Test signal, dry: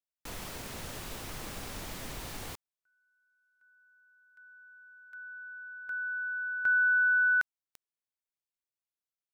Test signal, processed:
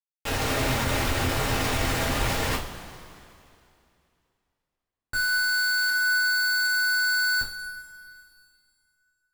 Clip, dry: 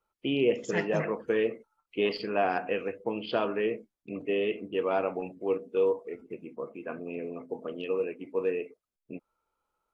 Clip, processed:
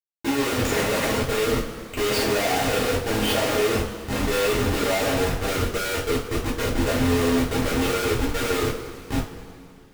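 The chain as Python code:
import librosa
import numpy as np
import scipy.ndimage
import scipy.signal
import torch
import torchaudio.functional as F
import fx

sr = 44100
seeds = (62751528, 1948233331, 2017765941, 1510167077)

y = fx.hum_notches(x, sr, base_hz=50, count=9)
y = fx.schmitt(y, sr, flips_db=-42.0)
y = fx.rev_double_slope(y, sr, seeds[0], early_s=0.29, late_s=2.6, knee_db=-18, drr_db=-6.0)
y = y * librosa.db_to_amplitude(3.5)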